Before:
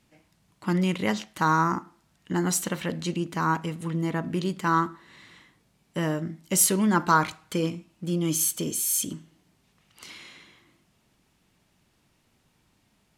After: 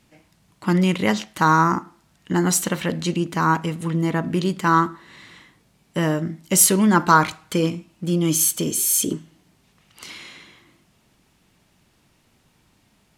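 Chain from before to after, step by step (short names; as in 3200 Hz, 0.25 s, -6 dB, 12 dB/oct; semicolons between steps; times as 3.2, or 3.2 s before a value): 8.76–9.16 bell 410 Hz +7 dB -> +14.5 dB 0.7 oct; gain +6 dB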